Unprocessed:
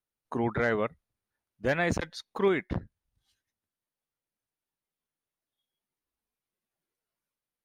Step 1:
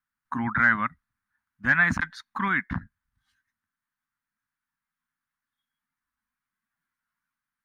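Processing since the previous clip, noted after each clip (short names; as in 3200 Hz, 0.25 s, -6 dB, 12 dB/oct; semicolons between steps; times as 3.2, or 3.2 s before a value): EQ curve 110 Hz 0 dB, 260 Hz +4 dB, 430 Hz -25 dB, 1000 Hz +7 dB, 1600 Hz +14 dB, 2700 Hz -1 dB, 4900 Hz -3 dB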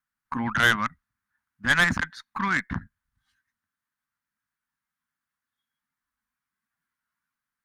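added harmonics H 2 -7 dB, 6 -24 dB, 8 -19 dB, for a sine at -8.5 dBFS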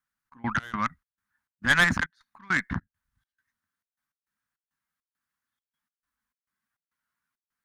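step gate "xx.x.xx.xx.x" 102 bpm -24 dB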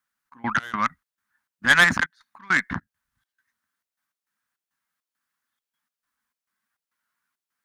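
low shelf 160 Hz -12 dB; gain +5 dB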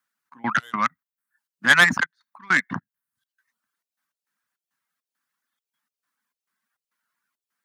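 reverb removal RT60 0.63 s; HPF 120 Hz 24 dB/oct; gain +1.5 dB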